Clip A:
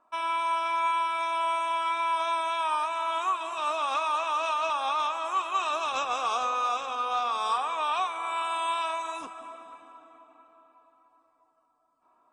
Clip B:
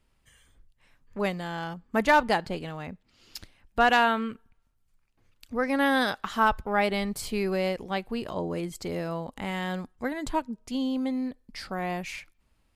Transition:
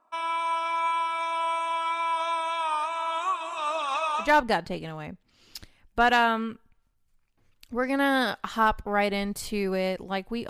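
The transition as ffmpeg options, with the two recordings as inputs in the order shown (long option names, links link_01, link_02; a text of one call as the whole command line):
ffmpeg -i cue0.wav -i cue1.wav -filter_complex "[0:a]asettb=1/sr,asplit=3[link_01][link_02][link_03];[link_01]atrim=end=3.754[link_04];[link_02]atrim=start=3.75:end=4.32,asetpts=PTS-STARTPTS,afade=type=in:duration=0.004:curve=qsin,afade=type=out:start_time=0.566:duration=0.004:curve=qsin,aphaser=in_gain=1:out_gain=1:delay=4:decay=0.38:speed=0.66:type=triangular[link_05];[link_03]atrim=start=4.316[link_06];[link_04][link_05]acrossfade=duration=0.004:curve1=hsin:curve2=qsin[link_07];[link_07][link_06]acrossfade=duration=0.004:curve1=qsin:curve2=hsin,apad=whole_dur=10.49,atrim=end=10.49,atrim=end=4.32,asetpts=PTS-STARTPTS[link_08];[1:a]atrim=start=1.98:end=8.29,asetpts=PTS-STARTPTS[link_09];[link_08][link_09]acrossfade=duration=0.14:curve1=tri:curve2=tri" out.wav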